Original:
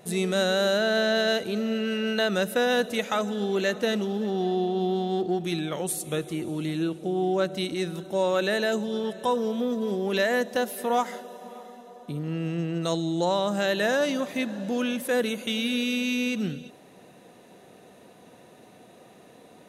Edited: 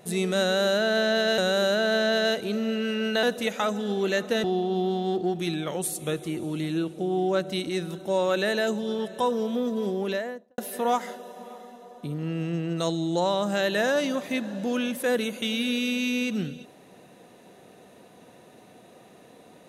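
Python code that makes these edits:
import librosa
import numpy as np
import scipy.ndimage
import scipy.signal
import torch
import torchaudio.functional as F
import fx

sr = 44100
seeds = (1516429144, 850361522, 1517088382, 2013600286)

y = fx.studio_fade_out(x, sr, start_s=9.92, length_s=0.71)
y = fx.edit(y, sr, fx.repeat(start_s=0.41, length_s=0.97, count=2),
    fx.cut(start_s=2.26, length_s=0.49),
    fx.cut(start_s=3.96, length_s=0.53), tone=tone)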